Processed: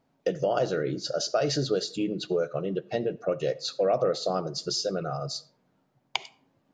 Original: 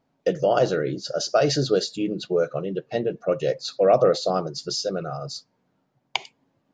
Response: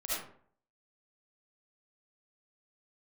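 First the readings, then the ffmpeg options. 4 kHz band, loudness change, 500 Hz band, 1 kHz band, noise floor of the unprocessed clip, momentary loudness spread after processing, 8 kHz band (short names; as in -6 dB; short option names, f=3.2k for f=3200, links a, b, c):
-2.5 dB, -5.0 dB, -5.5 dB, -5.5 dB, -72 dBFS, 8 LU, -2.5 dB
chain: -filter_complex "[0:a]acompressor=threshold=-27dB:ratio=2,asplit=2[a][b];[1:a]atrim=start_sample=2205[c];[b][c]afir=irnorm=-1:irlink=0,volume=-25dB[d];[a][d]amix=inputs=2:normalize=0"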